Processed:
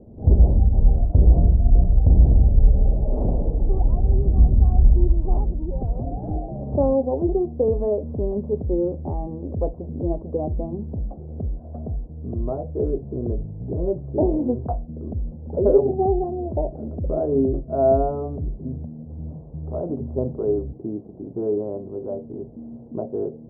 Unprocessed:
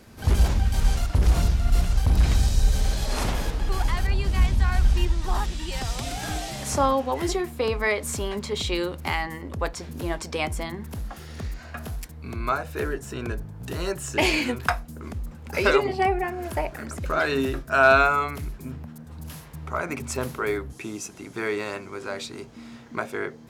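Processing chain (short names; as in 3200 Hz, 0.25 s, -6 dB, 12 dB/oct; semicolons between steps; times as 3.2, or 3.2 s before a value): steep low-pass 660 Hz 36 dB/oct; gain +5.5 dB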